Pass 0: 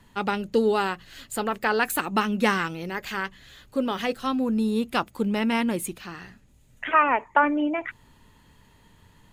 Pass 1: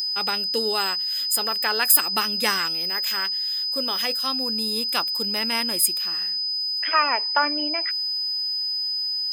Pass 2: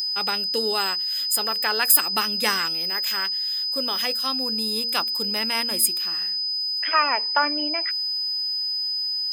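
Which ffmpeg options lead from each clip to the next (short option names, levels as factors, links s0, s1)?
-af "aeval=exprs='val(0)+0.0316*sin(2*PI*5000*n/s)':c=same,aemphasis=mode=production:type=riaa,volume=0.794"
-af "bandreject=f=116.9:t=h:w=4,bandreject=f=233.8:t=h:w=4,bandreject=f=350.7:t=h:w=4,bandreject=f=467.6:t=h:w=4"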